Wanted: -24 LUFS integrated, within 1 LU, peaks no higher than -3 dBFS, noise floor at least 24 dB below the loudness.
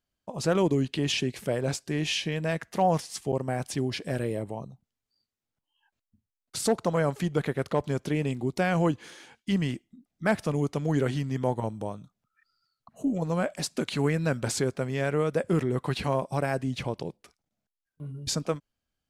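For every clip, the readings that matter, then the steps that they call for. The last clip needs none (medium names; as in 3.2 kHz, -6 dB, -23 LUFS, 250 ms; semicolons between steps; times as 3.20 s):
dropouts 1; longest dropout 7.1 ms; loudness -29.0 LUFS; peak level -12.5 dBFS; loudness target -24.0 LUFS
-> interpolate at 3.32 s, 7.1 ms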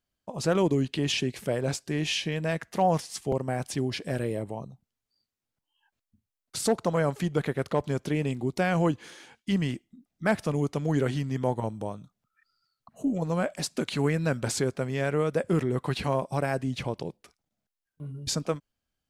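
dropouts 0; loudness -29.0 LUFS; peak level -12.5 dBFS; loudness target -24.0 LUFS
-> trim +5 dB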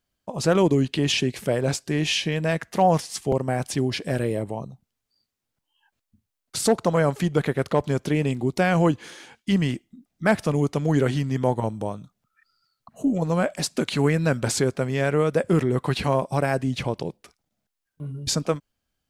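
loudness -24.0 LUFS; peak level -7.5 dBFS; noise floor -82 dBFS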